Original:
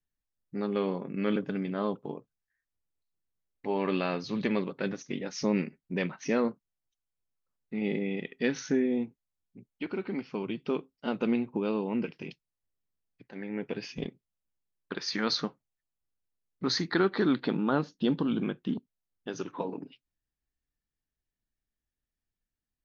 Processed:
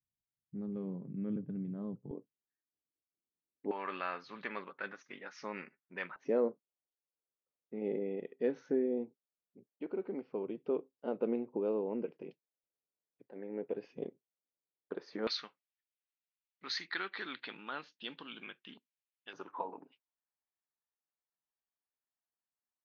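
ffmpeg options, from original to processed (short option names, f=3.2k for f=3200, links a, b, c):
-af "asetnsamples=n=441:p=0,asendcmd='2.11 bandpass f 320;3.71 bandpass f 1400;6.16 bandpass f 490;15.27 bandpass f 2500;19.33 bandpass f 950',bandpass=f=130:t=q:w=1.8:csg=0"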